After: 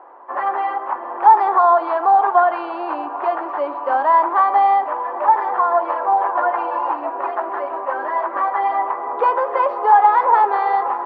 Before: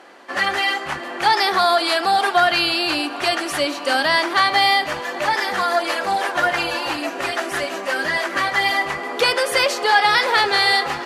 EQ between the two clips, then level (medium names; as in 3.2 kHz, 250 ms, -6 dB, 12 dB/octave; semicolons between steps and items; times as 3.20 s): high-pass 330 Hz 24 dB/octave; resonant low-pass 980 Hz, resonance Q 4.9; distance through air 180 m; -2.5 dB